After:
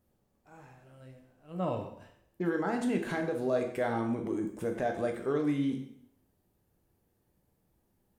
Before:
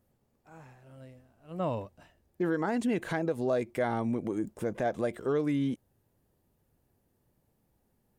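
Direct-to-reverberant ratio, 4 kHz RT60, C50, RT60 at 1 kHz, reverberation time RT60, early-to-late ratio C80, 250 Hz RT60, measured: 3.0 dB, 0.65 s, 7.0 dB, 0.65 s, 0.70 s, 10.0 dB, 0.70 s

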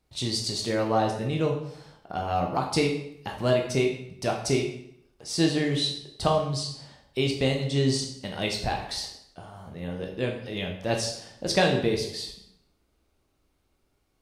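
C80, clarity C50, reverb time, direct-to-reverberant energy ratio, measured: 9.0 dB, 6.0 dB, 0.70 s, 1.0 dB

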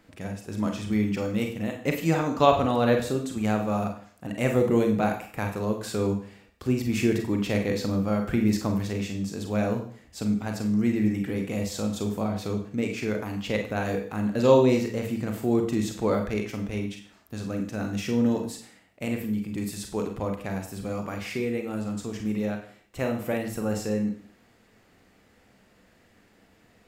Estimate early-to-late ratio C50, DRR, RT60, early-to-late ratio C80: 7.5 dB, 3.0 dB, 0.50 s, 11.0 dB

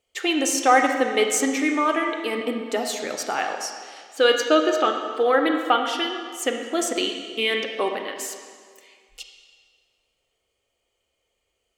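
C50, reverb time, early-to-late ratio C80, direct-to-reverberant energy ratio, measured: 5.0 dB, 1.9 s, 6.0 dB, 4.0 dB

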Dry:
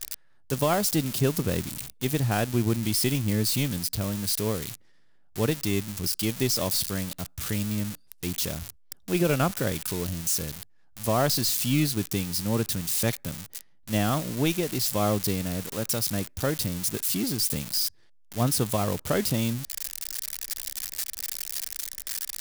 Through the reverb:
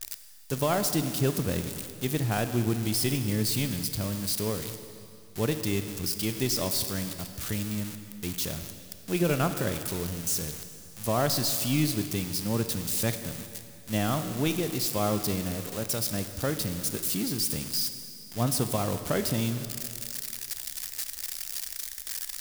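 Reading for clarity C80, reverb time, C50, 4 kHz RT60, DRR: 10.0 dB, 2.6 s, 9.0 dB, 2.5 s, 8.5 dB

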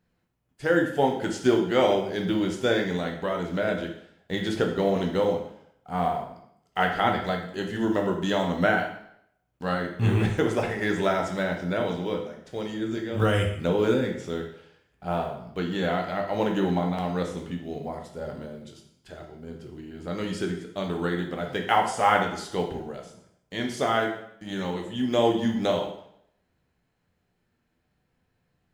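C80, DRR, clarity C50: 9.5 dB, 2.0 dB, 6.5 dB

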